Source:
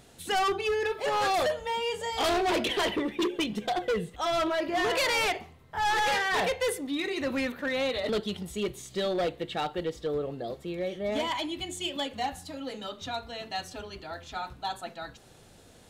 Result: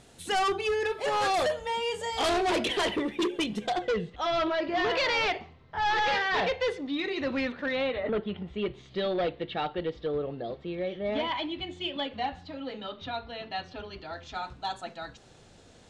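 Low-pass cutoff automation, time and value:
low-pass 24 dB/octave
3.63 s 11 kHz
4.05 s 5 kHz
7.72 s 5 kHz
8.04 s 2.2 kHz
8.93 s 4 kHz
13.72 s 4 kHz
14.50 s 7.8 kHz

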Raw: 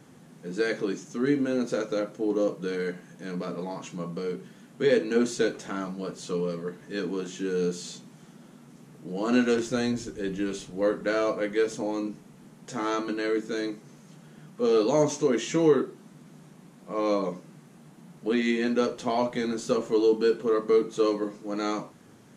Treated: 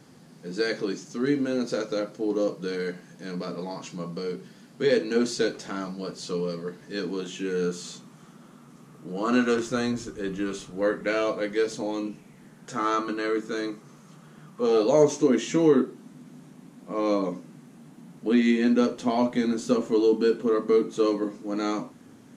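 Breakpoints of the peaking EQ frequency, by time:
peaking EQ +9 dB 0.36 oct
7.11 s 4.7 kHz
7.74 s 1.2 kHz
10.72 s 1.2 kHz
11.57 s 5.2 kHz
12.83 s 1.2 kHz
14.51 s 1.2 kHz
15.34 s 260 Hz

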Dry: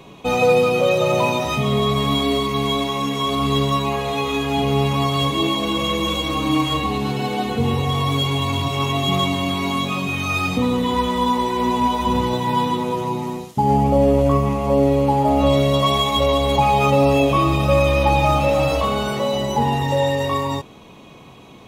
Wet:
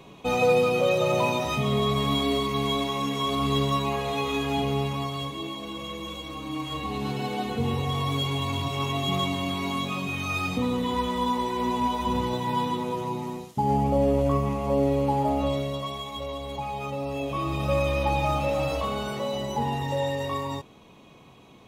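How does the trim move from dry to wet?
4.51 s -5.5 dB
5.41 s -14.5 dB
6.52 s -14.5 dB
7.06 s -7 dB
15.23 s -7 dB
15.95 s -16.5 dB
17.06 s -16.5 dB
17.68 s -8.5 dB

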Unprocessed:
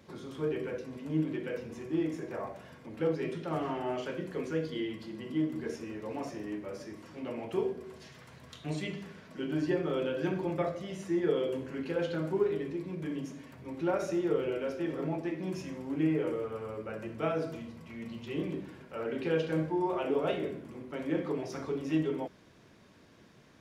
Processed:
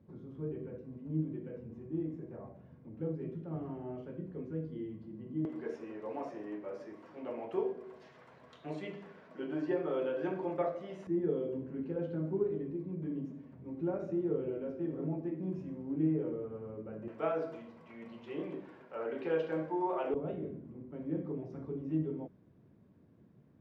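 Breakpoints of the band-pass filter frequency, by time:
band-pass filter, Q 0.74
120 Hz
from 5.45 s 670 Hz
from 11.07 s 190 Hz
from 17.08 s 760 Hz
from 20.14 s 140 Hz

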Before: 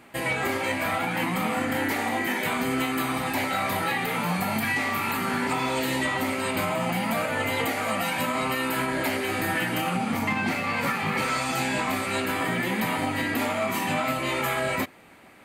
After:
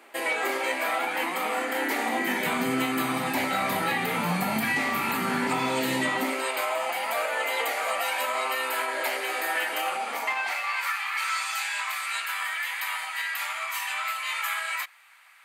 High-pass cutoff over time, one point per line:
high-pass 24 dB/octave
1.75 s 340 Hz
2.58 s 130 Hz
6.06 s 130 Hz
6.52 s 470 Hz
10.18 s 470 Hz
10.90 s 1.1 kHz

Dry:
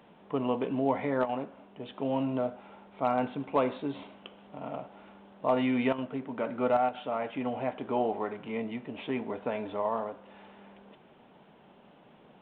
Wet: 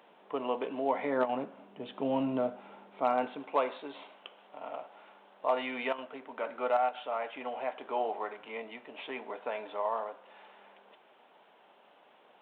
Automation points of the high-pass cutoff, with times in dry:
0.89 s 420 Hz
1.38 s 170 Hz
2.55 s 170 Hz
3.71 s 570 Hz

